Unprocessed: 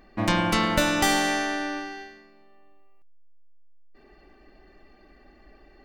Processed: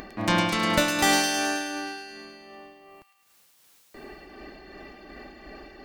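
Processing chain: high-pass 92 Hz 6 dB/octave; upward compressor, threshold -32 dBFS; tremolo 2.7 Hz, depth 46%; feedback echo behind a high-pass 106 ms, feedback 64%, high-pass 2.5 kHz, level -4 dB; trim +1.5 dB

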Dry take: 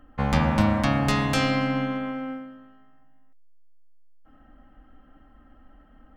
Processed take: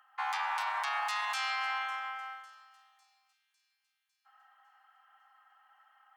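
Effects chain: Chebyshev high-pass 810 Hz, order 5; peak limiter -25 dBFS, peak gain reduction 10.5 dB; feedback echo behind a high-pass 552 ms, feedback 53%, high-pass 5 kHz, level -17 dB

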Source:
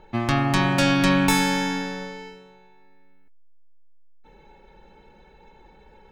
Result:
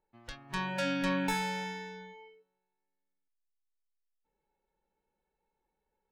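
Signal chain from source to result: treble shelf 2.6 kHz -9.5 dB; spectral noise reduction 22 dB; bass shelf 310 Hz -6 dB; trim -7 dB

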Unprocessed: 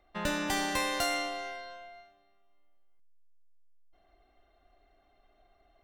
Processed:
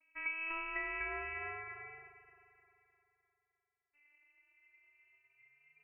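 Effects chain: vocoder on a note that slides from E4, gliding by -3 st; spectral noise reduction 9 dB; compression 3:1, threshold -42 dBFS, peak gain reduction 9 dB; frequency shift -130 Hz; two-band feedback delay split 560 Hz, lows 213 ms, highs 305 ms, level -14 dB; frequency inversion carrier 2.8 kHz; trim +4 dB

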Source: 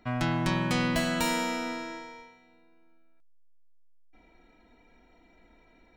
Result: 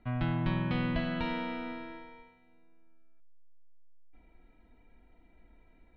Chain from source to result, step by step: steep low-pass 3.7 kHz 36 dB/octave; bass shelf 160 Hz +12 dB; trim -7.5 dB

